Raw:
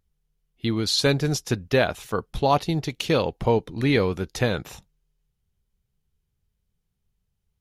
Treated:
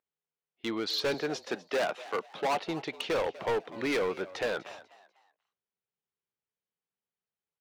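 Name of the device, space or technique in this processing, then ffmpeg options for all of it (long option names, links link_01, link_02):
walkie-talkie: -filter_complex "[0:a]highpass=440,lowpass=2800,asoftclip=type=hard:threshold=-25.5dB,agate=range=-7dB:threshold=-57dB:ratio=16:detection=peak,asettb=1/sr,asplit=3[link_01][link_02][link_03];[link_01]atrim=end=1.144[link_04];[link_02]atrim=start=1.14:end=2.64,asetpts=PTS-STARTPTS,afade=type=in:duration=0.004:curve=qsin,afade=type=out:start_time=1.496:duration=0.004:curve=qsin,highpass=frequency=150:width=0.5412,highpass=frequency=150:width=1.3066[link_05];[link_03]atrim=start=2.636[link_06];[link_04][link_05]acrossfade=duration=0.004:curve1=hsin:curve2=qsin[link_07];[link_07][link_06]acrossfade=duration=0.004:curve1=qsin:curve2=hsin,asplit=4[link_08][link_09][link_10][link_11];[link_09]adelay=246,afreqshift=98,volume=-18dB[link_12];[link_10]adelay=492,afreqshift=196,volume=-27.6dB[link_13];[link_11]adelay=738,afreqshift=294,volume=-37.3dB[link_14];[link_08][link_12][link_13][link_14]amix=inputs=4:normalize=0"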